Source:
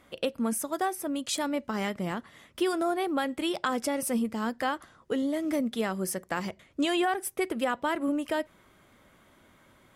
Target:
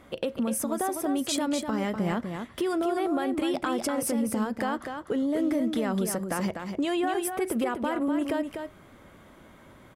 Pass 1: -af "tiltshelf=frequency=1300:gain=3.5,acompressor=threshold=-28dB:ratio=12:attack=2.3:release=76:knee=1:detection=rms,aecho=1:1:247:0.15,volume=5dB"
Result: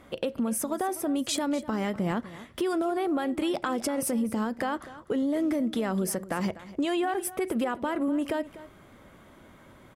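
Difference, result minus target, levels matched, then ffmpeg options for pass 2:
echo-to-direct −10 dB
-af "tiltshelf=frequency=1300:gain=3.5,acompressor=threshold=-28dB:ratio=12:attack=2.3:release=76:knee=1:detection=rms,aecho=1:1:247:0.473,volume=5dB"

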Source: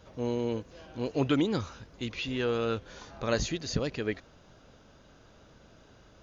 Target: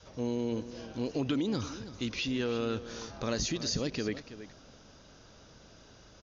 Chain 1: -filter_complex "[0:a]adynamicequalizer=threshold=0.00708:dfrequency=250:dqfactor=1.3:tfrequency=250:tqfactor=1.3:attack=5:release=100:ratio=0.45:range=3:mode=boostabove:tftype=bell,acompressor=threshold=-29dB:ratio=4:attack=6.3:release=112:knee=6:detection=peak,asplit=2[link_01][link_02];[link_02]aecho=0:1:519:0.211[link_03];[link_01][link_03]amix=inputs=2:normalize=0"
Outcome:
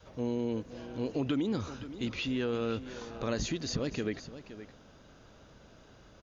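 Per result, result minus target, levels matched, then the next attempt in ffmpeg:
echo 192 ms late; 8,000 Hz band −4.5 dB
-filter_complex "[0:a]adynamicequalizer=threshold=0.00708:dfrequency=250:dqfactor=1.3:tfrequency=250:tqfactor=1.3:attack=5:release=100:ratio=0.45:range=3:mode=boostabove:tftype=bell,acompressor=threshold=-29dB:ratio=4:attack=6.3:release=112:knee=6:detection=peak,asplit=2[link_01][link_02];[link_02]aecho=0:1:327:0.211[link_03];[link_01][link_03]amix=inputs=2:normalize=0"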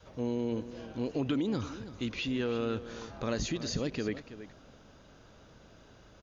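8,000 Hz band −4.5 dB
-filter_complex "[0:a]adynamicequalizer=threshold=0.00708:dfrequency=250:dqfactor=1.3:tfrequency=250:tqfactor=1.3:attack=5:release=100:ratio=0.45:range=3:mode=boostabove:tftype=bell,lowpass=frequency=5700:width_type=q:width=3.1,acompressor=threshold=-29dB:ratio=4:attack=6.3:release=112:knee=6:detection=peak,asplit=2[link_01][link_02];[link_02]aecho=0:1:327:0.211[link_03];[link_01][link_03]amix=inputs=2:normalize=0"

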